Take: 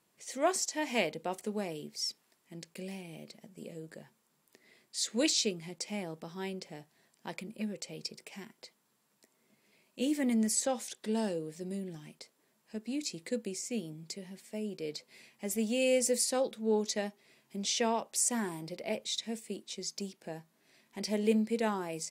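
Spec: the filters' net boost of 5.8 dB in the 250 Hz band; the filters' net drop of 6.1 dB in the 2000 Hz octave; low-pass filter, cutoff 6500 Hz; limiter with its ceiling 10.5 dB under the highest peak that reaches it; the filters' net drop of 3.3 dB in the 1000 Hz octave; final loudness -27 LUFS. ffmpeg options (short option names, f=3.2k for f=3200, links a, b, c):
-af "lowpass=6.5k,equalizer=f=250:t=o:g=7,equalizer=f=1k:t=o:g=-4,equalizer=f=2k:t=o:g=-7,volume=9dB,alimiter=limit=-16dB:level=0:latency=1"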